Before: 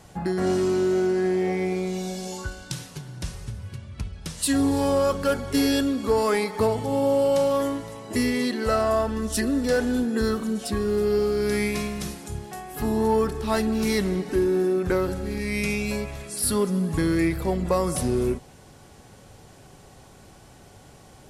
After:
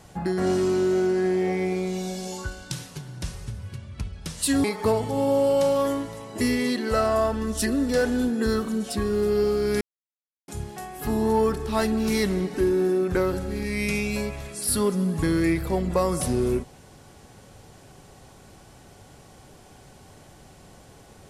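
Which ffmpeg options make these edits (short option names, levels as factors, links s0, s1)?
-filter_complex "[0:a]asplit=4[s0][s1][s2][s3];[s0]atrim=end=4.642[s4];[s1]atrim=start=6.388:end=11.56,asetpts=PTS-STARTPTS,afade=t=out:st=5.168:d=0.004:c=hsin[s5];[s2]atrim=start=11.56:end=12.23,asetpts=PTS-STARTPTS,volume=0[s6];[s3]atrim=start=12.23,asetpts=PTS-STARTPTS,afade=t=in:d=0.004:c=hsin[s7];[s5][s6][s7]concat=n=3:v=0:a=1[s8];[s4][s8]acrossfade=d=0.004:c1=hsin:c2=hsin"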